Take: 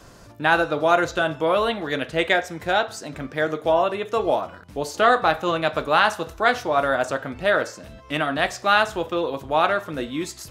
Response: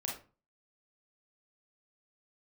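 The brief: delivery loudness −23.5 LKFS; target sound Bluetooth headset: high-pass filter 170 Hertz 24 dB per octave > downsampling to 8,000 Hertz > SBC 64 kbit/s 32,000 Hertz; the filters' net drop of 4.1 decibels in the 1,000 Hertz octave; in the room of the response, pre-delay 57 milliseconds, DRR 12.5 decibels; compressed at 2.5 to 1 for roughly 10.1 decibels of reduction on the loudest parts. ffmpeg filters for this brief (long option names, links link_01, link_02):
-filter_complex "[0:a]equalizer=frequency=1000:width_type=o:gain=-6,acompressor=threshold=-31dB:ratio=2.5,asplit=2[link_01][link_02];[1:a]atrim=start_sample=2205,adelay=57[link_03];[link_02][link_03]afir=irnorm=-1:irlink=0,volume=-14dB[link_04];[link_01][link_04]amix=inputs=2:normalize=0,highpass=frequency=170:width=0.5412,highpass=frequency=170:width=1.3066,aresample=8000,aresample=44100,volume=9dB" -ar 32000 -c:a sbc -b:a 64k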